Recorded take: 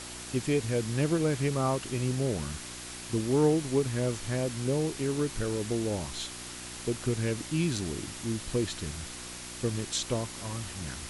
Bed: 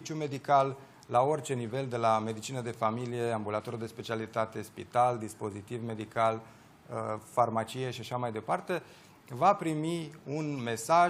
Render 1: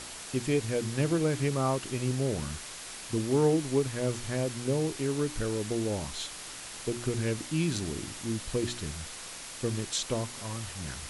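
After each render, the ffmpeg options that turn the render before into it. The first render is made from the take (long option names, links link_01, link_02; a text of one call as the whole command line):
ffmpeg -i in.wav -af "bandreject=frequency=60:width_type=h:width=4,bandreject=frequency=120:width_type=h:width=4,bandreject=frequency=180:width_type=h:width=4,bandreject=frequency=240:width_type=h:width=4,bandreject=frequency=300:width_type=h:width=4,bandreject=frequency=360:width_type=h:width=4" out.wav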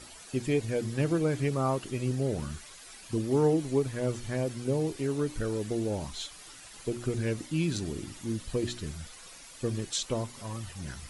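ffmpeg -i in.wav -af "afftdn=noise_reduction=11:noise_floor=-43" out.wav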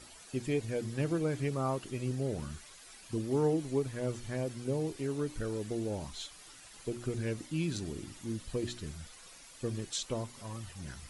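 ffmpeg -i in.wav -af "volume=-4.5dB" out.wav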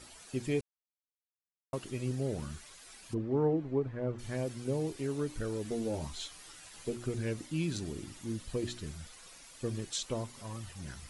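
ffmpeg -i in.wav -filter_complex "[0:a]asplit=3[link_01][link_02][link_03];[link_01]afade=type=out:start_time=3.13:duration=0.02[link_04];[link_02]lowpass=1600,afade=type=in:start_time=3.13:duration=0.02,afade=type=out:start_time=4.18:duration=0.02[link_05];[link_03]afade=type=in:start_time=4.18:duration=0.02[link_06];[link_04][link_05][link_06]amix=inputs=3:normalize=0,asettb=1/sr,asplit=3[link_07][link_08][link_09];[link_07]atrim=end=5.644[link_10];[link_08]atrim=start=5.64:end=6.96,asetpts=PTS-STARTPTS,afade=type=in:duration=0.004:curve=qsin,afade=type=out:start_time=1.316:duration=0.004:curve=qsin,asplit=2[link_11][link_12];[link_12]adelay=13,volume=-4.5dB[link_13];[link_11][link_13]amix=inputs=2:normalize=0,atrim=end_sample=58212[link_14];[link_09]atrim=start=6.956[link_15];[link_10][link_14]acrossfade=duration=0.004:curve1=hsin:curve2=qsin[link_16];[link_16][link_15]acrossfade=duration=0.004:curve1=qsin:curve2=hsin,asplit=3[link_17][link_18][link_19];[link_17]atrim=end=0.61,asetpts=PTS-STARTPTS,afade=type=out:start_time=0.606:duration=0.004:curve=hsin[link_20];[link_18]atrim=start=0.61:end=1.73,asetpts=PTS-STARTPTS,volume=0[link_21];[link_19]atrim=start=1.73,asetpts=PTS-STARTPTS,afade=type=in:duration=0.004:curve=hsin[link_22];[link_20][link_21][link_22]concat=n=3:v=0:a=1" out.wav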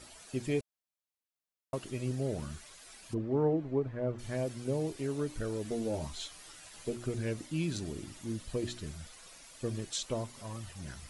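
ffmpeg -i in.wav -af "equalizer=frequency=630:width=7:gain=5" out.wav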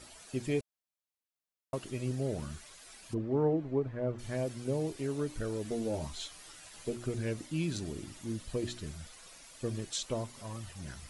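ffmpeg -i in.wav -af anull out.wav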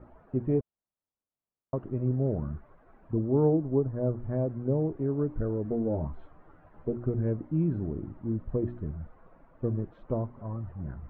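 ffmpeg -i in.wav -af "lowpass=frequency=1300:width=0.5412,lowpass=frequency=1300:width=1.3066,lowshelf=frequency=490:gain=8" out.wav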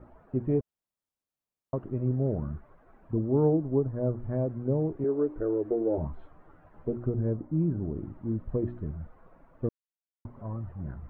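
ffmpeg -i in.wav -filter_complex "[0:a]asettb=1/sr,asplit=3[link_01][link_02][link_03];[link_01]atrim=end=5.044[link_04];[link_02]atrim=start=5.04:end=5.98,asetpts=PTS-STARTPTS,afade=type=in:duration=0.004:curve=qsin,afade=type=out:start_time=0.936:duration=0.004:curve=qsin,lowshelf=frequency=260:width_type=q:width=3:gain=-9[link_05];[link_03]atrim=start=5.976[link_06];[link_04][link_05]acrossfade=duration=0.004:curve1=hsin:curve2=qsin[link_07];[link_07][link_06]acrossfade=duration=0.004:curve1=qsin:curve2=hsin,asettb=1/sr,asplit=3[link_08][link_09][link_10];[link_08]atrim=end=7.084[link_11];[link_09]atrim=start=7.08:end=7.96,asetpts=PTS-STARTPTS,afade=type=in:duration=0.004:curve=qsin,afade=type=out:start_time=0.876:duration=0.004:curve=qsin,lowpass=1400[link_12];[link_10]atrim=start=7.956[link_13];[link_11][link_12]acrossfade=duration=0.004:curve1=hsin:curve2=qsin[link_14];[link_14][link_13]acrossfade=duration=0.004:curve1=qsin:curve2=hsin,asplit=3[link_15][link_16][link_17];[link_15]atrim=end=9.69,asetpts=PTS-STARTPTS,afade=type=out:start_time=9.686:duration=0.004:curve=hsin[link_18];[link_16]atrim=start=9.69:end=10.25,asetpts=PTS-STARTPTS,volume=0[link_19];[link_17]atrim=start=10.25,asetpts=PTS-STARTPTS,afade=type=in:duration=0.004:curve=hsin[link_20];[link_18][link_19][link_20]concat=n=3:v=0:a=1" out.wav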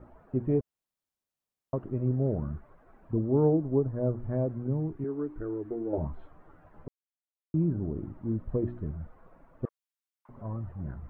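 ffmpeg -i in.wav -filter_complex "[0:a]asettb=1/sr,asplit=3[link_01][link_02][link_03];[link_01]atrim=end=4.674[link_04];[link_02]atrim=start=4.67:end=5.93,asetpts=PTS-STARTPTS,afade=type=in:duration=0.004:curve=qsin,afade=type=out:start_time=1.256:duration=0.004:curve=qsin,equalizer=frequency=540:width_type=o:width=0.99:gain=-12.5[link_05];[link_03]atrim=start=5.926[link_06];[link_04][link_05]acrossfade=duration=0.004:curve1=hsin:curve2=qsin[link_07];[link_07][link_06]acrossfade=duration=0.004:curve1=qsin:curve2=hsin,asettb=1/sr,asplit=3[link_08][link_09][link_10];[link_08]atrim=end=9.654[link_11];[link_09]atrim=start=9.65:end=10.29,asetpts=PTS-STARTPTS,afade=type=in:duration=0.004:curve=qsin,afade=type=out:start_time=0.636:duration=0.004:curve=qsin,highpass=frequency=980:width=0.5412,highpass=frequency=980:width=1.3066[link_12];[link_10]atrim=start=10.286[link_13];[link_11][link_12]acrossfade=duration=0.004:curve1=hsin:curve2=qsin[link_14];[link_14][link_13]acrossfade=duration=0.004:curve1=qsin:curve2=hsin,asplit=3[link_15][link_16][link_17];[link_15]atrim=end=6.88,asetpts=PTS-STARTPTS,afade=type=out:start_time=6.876:duration=0.004:curve=hsin[link_18];[link_16]atrim=start=6.88:end=7.54,asetpts=PTS-STARTPTS,volume=0[link_19];[link_17]atrim=start=7.54,asetpts=PTS-STARTPTS,afade=type=in:duration=0.004:curve=hsin[link_20];[link_18][link_19][link_20]concat=n=3:v=0:a=1" out.wav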